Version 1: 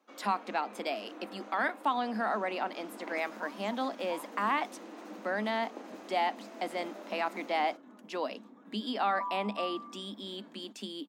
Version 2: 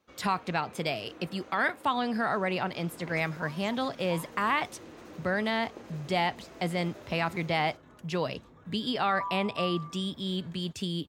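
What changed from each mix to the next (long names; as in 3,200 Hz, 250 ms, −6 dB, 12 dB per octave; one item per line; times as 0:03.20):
first sound −5.0 dB
second sound: add high-pass filter 410 Hz 12 dB per octave
master: remove Chebyshev high-pass with heavy ripple 200 Hz, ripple 6 dB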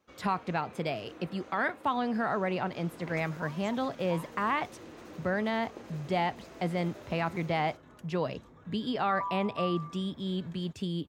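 speech: add high-shelf EQ 2,300 Hz −10 dB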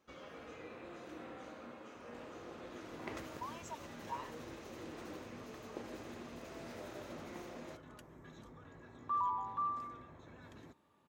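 speech: muted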